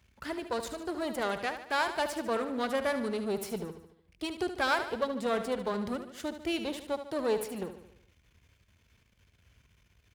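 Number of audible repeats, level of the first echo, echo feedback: 5, -10.0 dB, 52%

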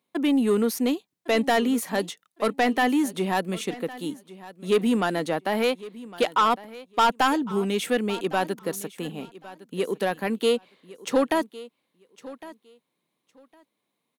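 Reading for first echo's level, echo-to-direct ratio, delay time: -18.0 dB, -18.0 dB, 1.108 s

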